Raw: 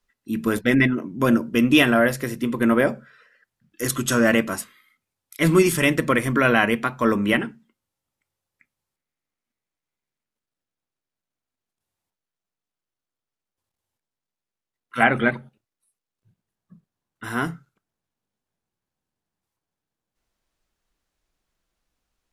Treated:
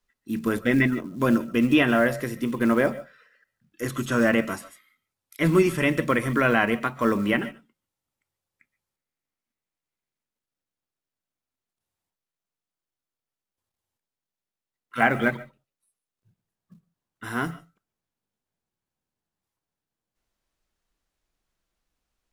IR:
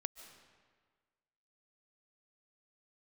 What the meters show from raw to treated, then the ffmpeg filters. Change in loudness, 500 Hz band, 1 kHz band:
−3.0 dB, −2.5 dB, −2.5 dB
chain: -filter_complex "[1:a]atrim=start_sample=2205,atrim=end_sample=6615[link_01];[0:a][link_01]afir=irnorm=-1:irlink=0,acrusher=bits=7:mode=log:mix=0:aa=0.000001,acrossover=split=2900[link_02][link_03];[link_03]acompressor=threshold=-38dB:ratio=4:attack=1:release=60[link_04];[link_02][link_04]amix=inputs=2:normalize=0"

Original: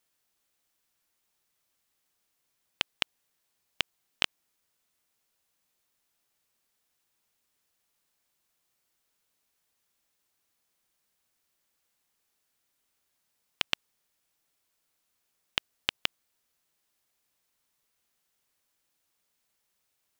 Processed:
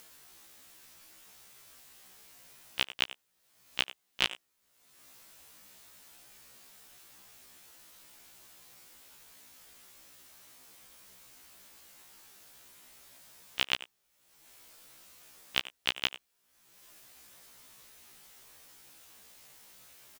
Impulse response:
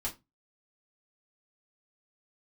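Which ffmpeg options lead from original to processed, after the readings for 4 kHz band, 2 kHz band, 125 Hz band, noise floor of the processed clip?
+1.0 dB, +1.0 dB, +1.0 dB, −76 dBFS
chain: -filter_complex "[0:a]acompressor=mode=upward:threshold=-39dB:ratio=2.5,asplit=2[link_01][link_02];[link_02]adelay=90,highpass=300,lowpass=3400,asoftclip=type=hard:threshold=-13.5dB,volume=-11dB[link_03];[link_01][link_03]amix=inputs=2:normalize=0,afftfilt=real='re*1.73*eq(mod(b,3),0)':imag='im*1.73*eq(mod(b,3),0)':win_size=2048:overlap=0.75,volume=3dB"

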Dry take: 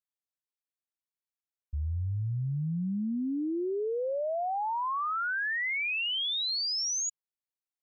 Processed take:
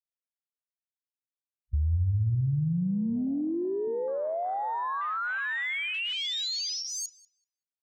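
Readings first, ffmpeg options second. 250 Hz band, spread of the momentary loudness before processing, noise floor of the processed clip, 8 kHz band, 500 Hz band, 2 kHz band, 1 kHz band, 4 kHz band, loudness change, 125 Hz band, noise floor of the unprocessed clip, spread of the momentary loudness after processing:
+2.5 dB, 5 LU, below −85 dBFS, can't be measured, +1.0 dB, −0.5 dB, 0.0 dB, −1.0 dB, +1.0 dB, +5.5 dB, below −85 dBFS, 4 LU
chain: -filter_complex "[0:a]afwtdn=0.0224,equalizer=frequency=85:width_type=o:width=1.8:gain=10.5,acompressor=threshold=-24dB:ratio=6,asplit=2[link_01][link_02];[link_02]adelay=191,lowpass=frequency=1800:poles=1,volume=-13dB,asplit=2[link_03][link_04];[link_04]adelay=191,lowpass=frequency=1800:poles=1,volume=0.37,asplit=2[link_05][link_06];[link_06]adelay=191,lowpass=frequency=1800:poles=1,volume=0.37,asplit=2[link_07][link_08];[link_08]adelay=191,lowpass=frequency=1800:poles=1,volume=0.37[link_09];[link_03][link_05][link_07][link_09]amix=inputs=4:normalize=0[link_10];[link_01][link_10]amix=inputs=2:normalize=0"

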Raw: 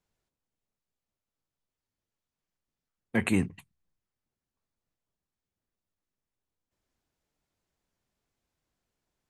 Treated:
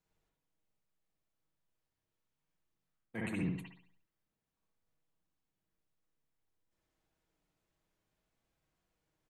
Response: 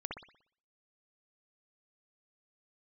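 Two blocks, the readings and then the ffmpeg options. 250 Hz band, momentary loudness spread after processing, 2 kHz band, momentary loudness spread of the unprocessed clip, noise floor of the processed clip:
−9.5 dB, 12 LU, −11.0 dB, 7 LU, below −85 dBFS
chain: -filter_complex "[0:a]aecho=1:1:6.3:0.33,areverse,acompressor=threshold=-33dB:ratio=16,areverse[link_01];[1:a]atrim=start_sample=2205[link_02];[link_01][link_02]afir=irnorm=-1:irlink=0"

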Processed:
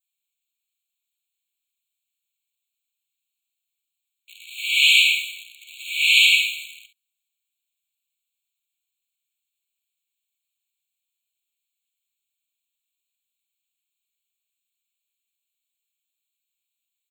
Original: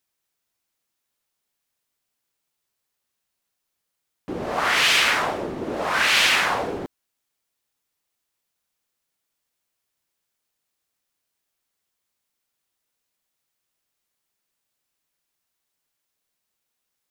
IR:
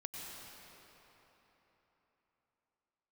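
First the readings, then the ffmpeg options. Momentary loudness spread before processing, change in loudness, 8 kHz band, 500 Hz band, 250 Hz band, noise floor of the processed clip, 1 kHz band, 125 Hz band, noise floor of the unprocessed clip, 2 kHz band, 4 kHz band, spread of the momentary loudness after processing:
16 LU, +4.0 dB, −0.5 dB, below −40 dB, below −40 dB, −83 dBFS, below −40 dB, below −40 dB, −80 dBFS, +1.5 dB, +4.5 dB, 17 LU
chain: -filter_complex "[0:a]adynamicequalizer=threshold=0.02:dfrequency=1800:dqfactor=1.1:tfrequency=1800:tqfactor=1.1:attack=5:release=100:ratio=0.375:range=2.5:mode=boostabove:tftype=bell,aecho=1:1:48|66:0.282|0.211,asplit=2[link_01][link_02];[link_02]acrusher=bits=5:dc=4:mix=0:aa=0.000001,volume=-6dB[link_03];[link_01][link_03]amix=inputs=2:normalize=0,afftfilt=real='re*eq(mod(floor(b*sr/1024/2200),2),1)':imag='im*eq(mod(floor(b*sr/1024/2200),2),1)':win_size=1024:overlap=0.75,volume=-1dB"

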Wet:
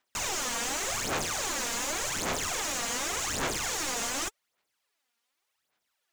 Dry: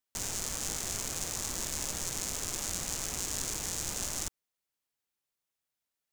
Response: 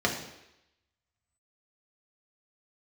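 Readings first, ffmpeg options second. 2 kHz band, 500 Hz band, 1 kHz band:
+11.0 dB, +9.0 dB, +11.0 dB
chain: -filter_complex "[0:a]aphaser=in_gain=1:out_gain=1:delay=4.3:decay=0.65:speed=0.87:type=sinusoidal,asplit=2[link_01][link_02];[link_02]highpass=frequency=720:poles=1,volume=20dB,asoftclip=type=tanh:threshold=-13.5dB[link_03];[link_01][link_03]amix=inputs=2:normalize=0,lowpass=frequency=3300:poles=1,volume=-6dB,volume=-2.5dB"

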